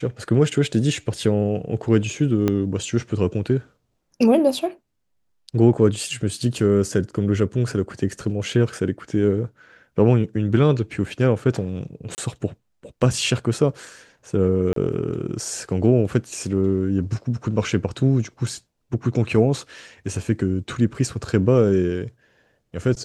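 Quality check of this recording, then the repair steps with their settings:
2.48 pop -8 dBFS
12.15–12.18 gap 29 ms
14.73–14.76 gap 33 ms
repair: de-click; interpolate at 12.15, 29 ms; interpolate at 14.73, 33 ms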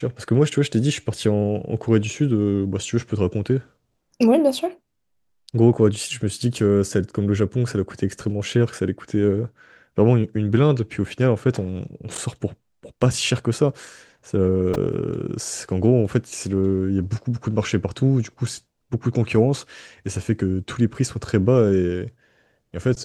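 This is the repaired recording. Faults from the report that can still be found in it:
2.48 pop

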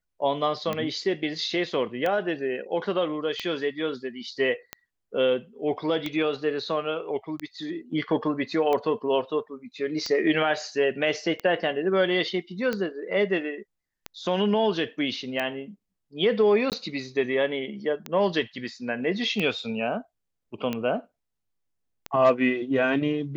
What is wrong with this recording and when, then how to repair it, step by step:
tick 45 rpm -15 dBFS
16.7–16.72 gap 18 ms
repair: de-click; interpolate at 16.7, 18 ms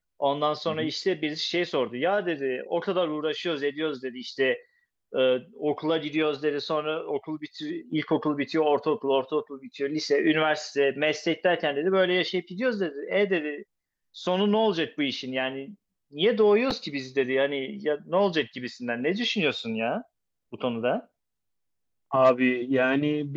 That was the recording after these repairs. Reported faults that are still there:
none

